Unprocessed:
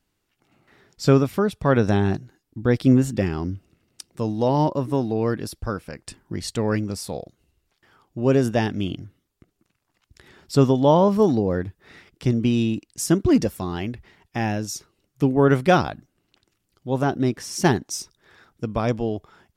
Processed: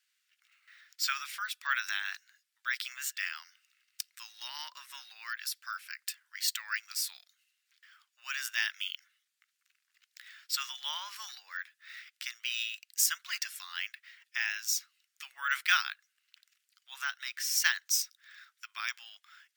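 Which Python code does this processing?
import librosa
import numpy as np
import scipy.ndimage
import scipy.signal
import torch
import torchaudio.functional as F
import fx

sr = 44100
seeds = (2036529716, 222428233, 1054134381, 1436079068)

y = scipy.signal.sosfilt(scipy.signal.butter(6, 1500.0, 'highpass', fs=sr, output='sos'), x)
y = np.repeat(scipy.signal.resample_poly(y, 1, 2), 2)[:len(y)]
y = y * librosa.db_to_amplitude(2.0)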